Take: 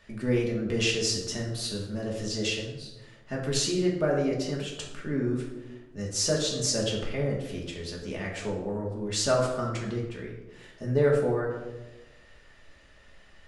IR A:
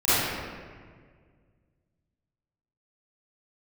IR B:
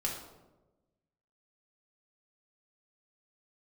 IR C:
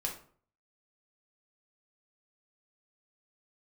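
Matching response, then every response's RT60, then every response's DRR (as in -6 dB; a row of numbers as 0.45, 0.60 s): B; 1.8, 1.1, 0.50 s; -17.0, -3.0, -0.5 dB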